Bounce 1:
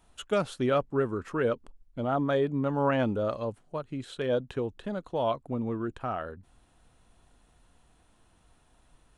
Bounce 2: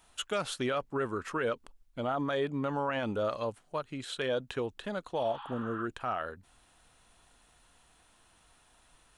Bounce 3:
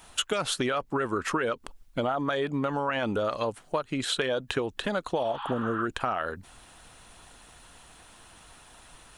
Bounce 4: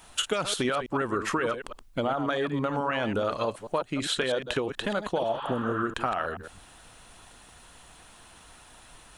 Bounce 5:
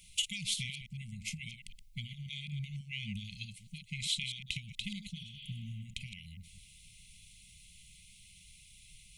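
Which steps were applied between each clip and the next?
spectral replace 5.22–5.80 s, 780–5100 Hz both; tilt shelf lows -6 dB, about 660 Hz; peak limiter -22.5 dBFS, peak gain reduction 9 dB
harmonic-percussive split percussive +5 dB; compression, threshold -34 dBFS, peak gain reduction 10 dB; trim +9 dB
chunks repeated in reverse 108 ms, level -9 dB
brick-wall FIR band-stop 210–2000 Hz; trim -3.5 dB

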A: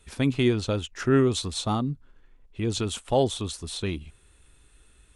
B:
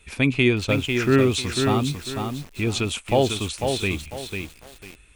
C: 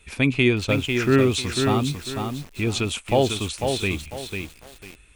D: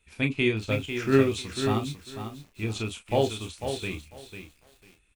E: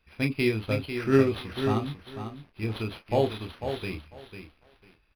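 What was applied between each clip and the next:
peaking EQ 2.4 kHz +12 dB 0.43 oct; bit-crushed delay 497 ms, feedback 35%, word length 7-bit, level -5 dB; trim +2.5 dB
no audible change
early reflections 27 ms -7 dB, 37 ms -10 dB; upward expansion 1.5:1, over -33 dBFS; trim -4 dB
decimation joined by straight lines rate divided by 6×

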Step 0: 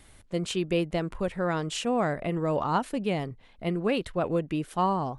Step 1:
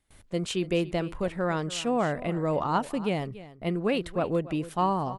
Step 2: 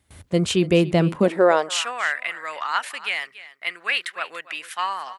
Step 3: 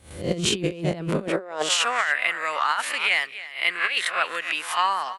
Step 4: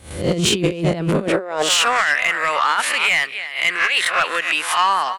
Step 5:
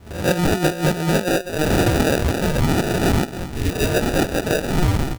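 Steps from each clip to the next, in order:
gate with hold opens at -44 dBFS; delay 285 ms -16.5 dB
high-pass sweep 76 Hz -> 1.8 kHz, 0.82–1.98 s; trim +8.5 dB
reverse spectral sustain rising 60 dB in 0.40 s; compressor with a negative ratio -23 dBFS, ratio -0.5
in parallel at 0 dB: peak limiter -15 dBFS, peak gain reduction 7.5 dB; on the sum: saturation -11.5 dBFS, distortion -16 dB; trim +3 dB
sample-and-hold 41×; spectral replace 3.56–3.88 s, 470–1700 Hz both

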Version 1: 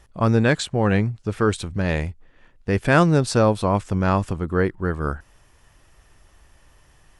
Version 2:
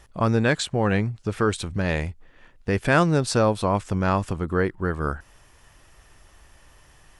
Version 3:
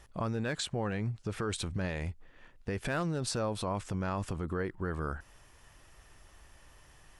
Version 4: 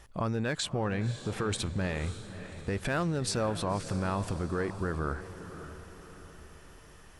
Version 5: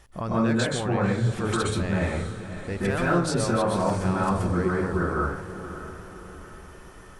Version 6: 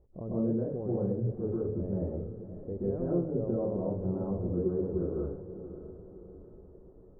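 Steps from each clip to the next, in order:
bass shelf 470 Hz -3 dB; in parallel at +0.5 dB: compression, threshold -28 dBFS, peak gain reduction 15.5 dB; on the sum: trim -3 dB
hard clipper -10.5 dBFS, distortion -24 dB; peak limiter -20 dBFS, peak gain reduction 9.5 dB; trim -4.5 dB
echo that smears into a reverb 568 ms, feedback 49%, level -12 dB; trim +2.5 dB
plate-style reverb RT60 0.55 s, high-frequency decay 0.35×, pre-delay 115 ms, DRR -6 dB
four-pole ladder low-pass 560 Hz, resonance 40%

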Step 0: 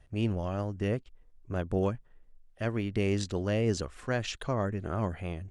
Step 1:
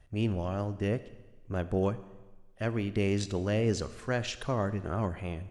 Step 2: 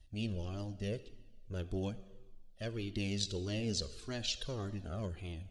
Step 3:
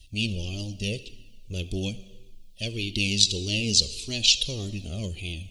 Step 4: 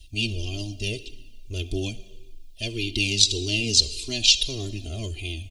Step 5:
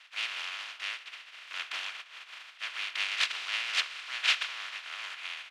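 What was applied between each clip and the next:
Schroeder reverb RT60 1.2 s, combs from 26 ms, DRR 14 dB
ten-band graphic EQ 125 Hz -7 dB, 500 Hz -3 dB, 1 kHz -12 dB, 2 kHz -8 dB, 4 kHz +11 dB; Shepard-style flanger falling 1.7 Hz; trim +1 dB
FFT filter 210 Hz 0 dB, 520 Hz -4 dB, 1.6 kHz -19 dB, 2.5 kHz +10 dB; trim +8 dB
comb 2.9 ms, depth 78%
spectral contrast reduction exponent 0.16; Butterworth band-pass 1.9 kHz, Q 1

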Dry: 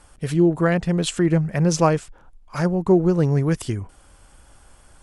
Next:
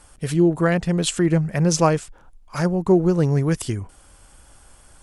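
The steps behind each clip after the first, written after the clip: treble shelf 5 kHz +5.5 dB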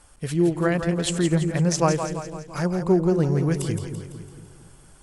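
two-band feedback delay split 450 Hz, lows 227 ms, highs 168 ms, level -7.5 dB; trim -3.5 dB

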